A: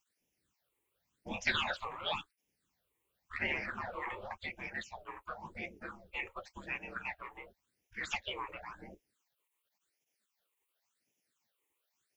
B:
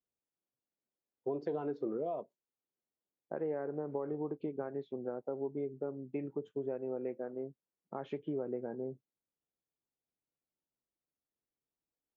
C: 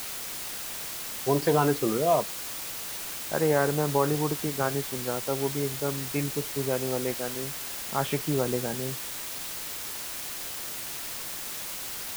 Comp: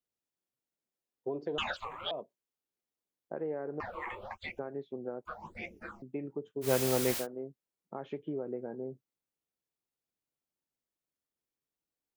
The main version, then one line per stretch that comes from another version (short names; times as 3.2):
B
1.58–2.11 from A
3.8–4.59 from A
5.25–6.02 from A
6.66–7.22 from C, crossfade 0.10 s